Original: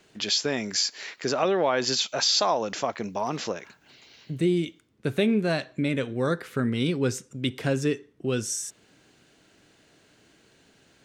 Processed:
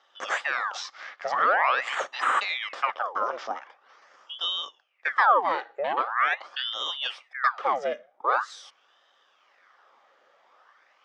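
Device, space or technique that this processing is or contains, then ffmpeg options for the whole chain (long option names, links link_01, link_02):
voice changer toy: -af "aeval=exprs='val(0)*sin(2*PI*1800*n/s+1800*0.9/0.44*sin(2*PI*0.44*n/s))':channel_layout=same,highpass=140,highpass=540,equalizer=frequency=540:width_type=q:width=4:gain=7,equalizer=frequency=780:width_type=q:width=4:gain=5,equalizer=frequency=1200:width_type=q:width=4:gain=10,equalizer=frequency=1700:width_type=q:width=4:gain=4,equalizer=frequency=2600:width_type=q:width=4:gain=-6,equalizer=frequency=4200:width_type=q:width=4:gain=-10,lowpass=frequency=4700:width=0.5412,lowpass=frequency=4700:width=1.3066"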